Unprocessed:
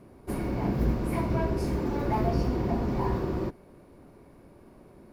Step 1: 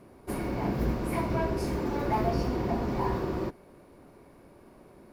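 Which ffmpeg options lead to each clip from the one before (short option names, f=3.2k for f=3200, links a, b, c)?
-af "lowshelf=f=320:g=-6,volume=2dB"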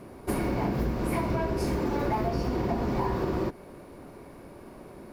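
-af "acompressor=threshold=-32dB:ratio=6,volume=7.5dB"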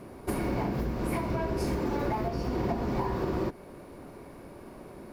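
-af "alimiter=limit=-19.5dB:level=0:latency=1:release=469"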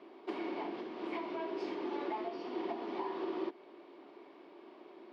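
-af "highpass=f=320:w=0.5412,highpass=f=320:w=1.3066,equalizer=f=340:t=q:w=4:g=5,equalizer=f=520:t=q:w=4:g=-8,equalizer=f=1.5k:t=q:w=4:g=-5,equalizer=f=3.2k:t=q:w=4:g=7,lowpass=f=4.3k:w=0.5412,lowpass=f=4.3k:w=1.3066,volume=-6dB"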